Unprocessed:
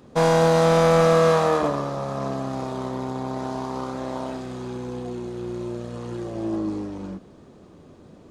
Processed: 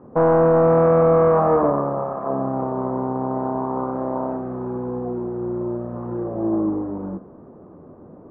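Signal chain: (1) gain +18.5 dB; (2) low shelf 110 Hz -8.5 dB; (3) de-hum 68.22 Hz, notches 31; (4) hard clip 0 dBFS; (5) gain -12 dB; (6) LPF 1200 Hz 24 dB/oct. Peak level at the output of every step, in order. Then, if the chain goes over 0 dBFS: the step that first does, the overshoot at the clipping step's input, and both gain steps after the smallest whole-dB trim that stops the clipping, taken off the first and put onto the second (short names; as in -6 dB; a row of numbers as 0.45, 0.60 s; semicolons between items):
+10.0, +9.5, +9.5, 0.0, -12.0, -10.0 dBFS; step 1, 9.5 dB; step 1 +8.5 dB, step 5 -2 dB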